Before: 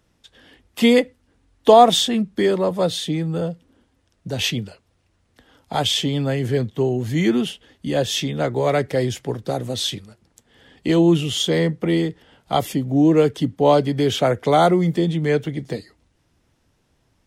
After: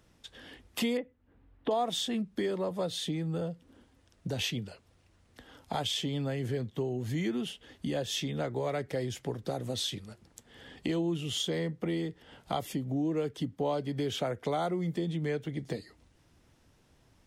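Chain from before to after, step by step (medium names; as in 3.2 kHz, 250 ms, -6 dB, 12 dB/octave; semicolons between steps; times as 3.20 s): compression 3:1, threshold -34 dBFS, peak gain reduction 20 dB; 0.97–1.71 s: distance through air 480 m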